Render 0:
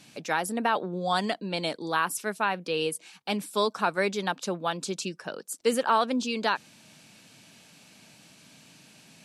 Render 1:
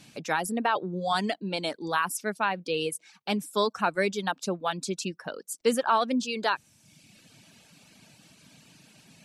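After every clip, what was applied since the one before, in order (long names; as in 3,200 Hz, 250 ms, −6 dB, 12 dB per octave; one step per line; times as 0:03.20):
reverb reduction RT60 0.92 s
low-shelf EQ 130 Hz +8 dB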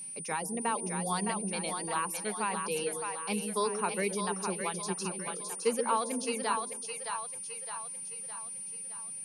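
EQ curve with evenly spaced ripples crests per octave 0.83, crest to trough 7 dB
steady tone 9,300 Hz −32 dBFS
echo with a time of its own for lows and highs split 530 Hz, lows 129 ms, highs 613 ms, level −5 dB
level −7.5 dB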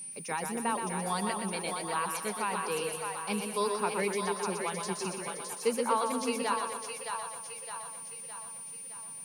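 feedback echo at a low word length 122 ms, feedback 55%, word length 9 bits, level −6 dB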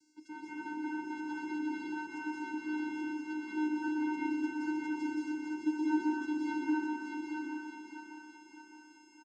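channel vocoder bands 8, square 305 Hz
single-tap delay 832 ms −5 dB
convolution reverb RT60 0.70 s, pre-delay 168 ms, DRR −7 dB
level −7 dB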